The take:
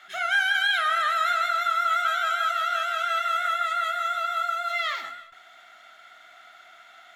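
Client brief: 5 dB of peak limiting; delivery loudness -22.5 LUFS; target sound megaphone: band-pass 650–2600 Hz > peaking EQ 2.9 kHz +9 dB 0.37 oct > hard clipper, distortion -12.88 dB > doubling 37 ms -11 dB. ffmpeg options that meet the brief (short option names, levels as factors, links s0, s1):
-filter_complex "[0:a]alimiter=limit=0.1:level=0:latency=1,highpass=650,lowpass=2600,equalizer=f=2900:t=o:w=0.37:g=9,asoftclip=type=hard:threshold=0.0447,asplit=2[s0][s1];[s1]adelay=37,volume=0.282[s2];[s0][s2]amix=inputs=2:normalize=0,volume=2"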